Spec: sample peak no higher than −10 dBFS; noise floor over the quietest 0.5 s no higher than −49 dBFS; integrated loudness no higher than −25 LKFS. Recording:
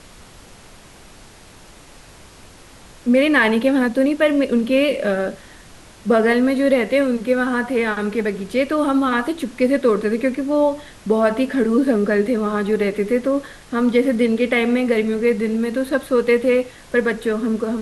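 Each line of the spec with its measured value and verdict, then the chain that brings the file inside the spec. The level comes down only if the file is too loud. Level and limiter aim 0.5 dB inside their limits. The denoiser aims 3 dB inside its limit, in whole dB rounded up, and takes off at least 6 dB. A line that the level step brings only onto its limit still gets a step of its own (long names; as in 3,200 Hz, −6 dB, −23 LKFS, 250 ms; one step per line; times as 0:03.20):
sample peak −5.0 dBFS: out of spec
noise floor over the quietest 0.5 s −44 dBFS: out of spec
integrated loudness −18.5 LKFS: out of spec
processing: level −7 dB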